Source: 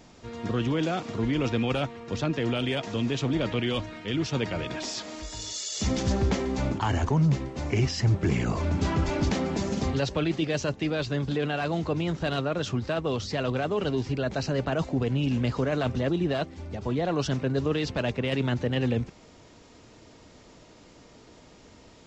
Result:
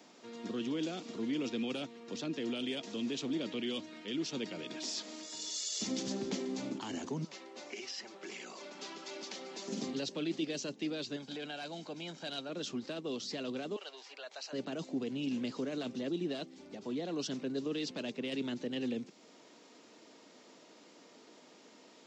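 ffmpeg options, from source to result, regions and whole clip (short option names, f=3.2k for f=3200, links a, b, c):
-filter_complex "[0:a]asettb=1/sr,asplit=3[a][b][c];[a]atrim=end=7.244[d];[b]atrim=start=7.24:end=9.68,asetpts=PTS-STARTPTS,afade=t=in:d=0.004:c=qsin,afade=t=out:st=2.436:d=0.004:c=qsin,aecho=1:1:5.3:0.4,atrim=end_sample=107604,acrossover=split=600|2900[e][f][g];[e]acompressor=threshold=-33dB:ratio=4[h];[f]acompressor=threshold=-37dB:ratio=4[i];[g]acompressor=threshold=-38dB:ratio=4[j];[h][i][j]amix=inputs=3:normalize=0,highpass=400,lowpass=7k[k];[c]atrim=start=9.676[l];[d][k]acrossfade=d=0.004:c1=hsin:c2=qsin[m];[m][l]acrossfade=d=0.004:c1=qsin:c2=hsin,asettb=1/sr,asplit=3[n][o][p];[n]atrim=end=11.164[q];[o]atrim=start=11.16:end=12.49,asetpts=PTS-STARTPTS,afade=t=in:d=0.004:c=qsin,afade=t=out:st=1.326:d=0.004:c=qsin,lowshelf=f=280:g=-9.5,aecho=1:1:1.3:0.46,atrim=end_sample=58653[r];[p]atrim=start=12.486[s];[q][r]acrossfade=d=0.004:c1=hsin:c2=qsin[t];[t][s]acrossfade=d=0.004:c1=qsin:c2=hsin,asettb=1/sr,asplit=3[u][v][w];[u]atrim=end=13.764[x];[v]atrim=start=13.76:end=14.53,asetpts=PTS-STARTPTS,afade=t=in:d=0.004:c=qsin,afade=t=out:st=0.766:d=0.004:c=qsin,highpass=f=660:w=0.5412,highpass=f=660:w=1.3066,highshelf=f=4.4k:g=-5,aeval=exprs='val(0)+0.000398*(sin(2*PI*50*n/s)+sin(2*PI*2*50*n/s)/2+sin(2*PI*3*50*n/s)/3+sin(2*PI*4*50*n/s)/4+sin(2*PI*5*50*n/s)/5)':c=same[y];[w]atrim=start=14.526[z];[x][y]acrossfade=d=0.004:c1=hsin:c2=qsin[aa];[aa][z]acrossfade=d=0.004:c1=qsin:c2=hsin,highpass=f=220:w=0.5412,highpass=f=220:w=1.3066,equalizer=f=4.1k:t=o:w=1.4:g=2,acrossover=split=400|3000[ab][ac][ad];[ac]acompressor=threshold=-52dB:ratio=2[ae];[ab][ae][ad]amix=inputs=3:normalize=0,volume=-5dB"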